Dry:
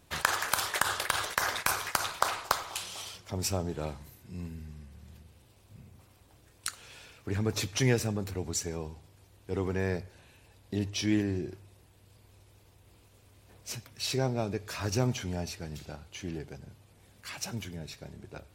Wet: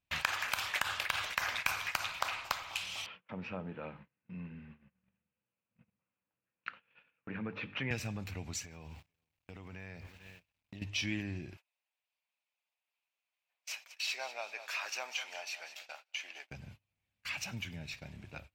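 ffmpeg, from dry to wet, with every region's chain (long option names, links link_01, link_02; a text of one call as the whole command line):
ffmpeg -i in.wav -filter_complex "[0:a]asettb=1/sr,asplit=3[link_01][link_02][link_03];[link_01]atrim=end=3.064[link_04];[link_02]atrim=start=3.06:end=7.91,asetpts=PTS-STARTPTS,afade=type=in:duration=0.004:curve=qsin,afade=type=out:start_time=4.846:duration=0.004:curve=qsin,highpass=180,equalizer=frequency=190:width_type=q:width=4:gain=7,equalizer=frequency=480:width_type=q:width=4:gain=7,equalizer=frequency=710:width_type=q:width=4:gain=-5,equalizer=frequency=1400:width_type=q:width=4:gain=3,equalizer=frequency=2200:width_type=q:width=4:gain=-5,lowpass=frequency=2500:width=0.5412,lowpass=frequency=2500:width=1.3066,bandreject=frequency=50:width_type=h:width=6,bandreject=frequency=100:width_type=h:width=6,bandreject=frequency=150:width_type=h:width=6,bandreject=frequency=200:width_type=h:width=6,bandreject=frequency=250:width_type=h:width=6,bandreject=frequency=300:width_type=h:width=6,bandreject=frequency=350:width_type=h:width=6,bandreject=frequency=400:width_type=h:width=6,bandreject=frequency=450:width_type=h:width=6,bandreject=frequency=500:width_type=h:width=6[link_05];[link_03]atrim=start=7.906[link_06];[link_04][link_05]acrossfade=duration=0.004:curve1=hsin:curve2=qsin[link_07];[link_07][link_06]acrossfade=duration=0.004:curve1=qsin:curve2=hsin,asettb=1/sr,asplit=3[link_08][link_09][link_10];[link_08]atrim=end=8.634[link_11];[link_09]atrim=start=8.63:end=10.82,asetpts=PTS-STARTPTS,afade=type=in:duration=0.004:curve=qsin,afade=type=out:start_time=2.186:duration=0.004:curve=qsin,aeval=exprs='val(0)*gte(abs(val(0)),0.00158)':channel_layout=same,aecho=1:1:437:0.0708,atrim=end_sample=96579,acompressor=threshold=-40dB:ratio=10:attack=3.2:release=140:knee=1:detection=peak[link_12];[link_10]atrim=start=10.816[link_13];[link_11][link_12]acrossfade=duration=0.004:curve1=hsin:curve2=qsin[link_14];[link_14][link_13]acrossfade=duration=0.004:curve1=qsin:curve2=hsin,asettb=1/sr,asplit=3[link_15][link_16][link_17];[link_15]atrim=end=11.574[link_18];[link_16]atrim=start=11.57:end=16.51,asetpts=PTS-STARTPTS,afade=type=in:duration=0.004:curve=qsin,afade=type=out:start_time=4.936:duration=0.004:curve=qsin,highpass=frequency=600:width=0.5412,highpass=frequency=600:width=1.3066,aecho=1:1:194|388|582|776:0.2|0.0858|0.0369|0.0159,atrim=end_sample=217854[link_19];[link_17]atrim=start=16.506[link_20];[link_18][link_19]acrossfade=duration=0.004:curve1=hsin:curve2=qsin[link_21];[link_21][link_20]acrossfade=duration=0.004:curve1=qsin:curve2=hsin,acompressor=threshold=-45dB:ratio=1.5,agate=range=-28dB:threshold=-51dB:ratio=16:detection=peak,equalizer=frequency=400:width_type=o:width=0.67:gain=-10,equalizer=frequency=2500:width_type=o:width=0.67:gain=11,equalizer=frequency=10000:width_type=o:width=0.67:gain=-9" out.wav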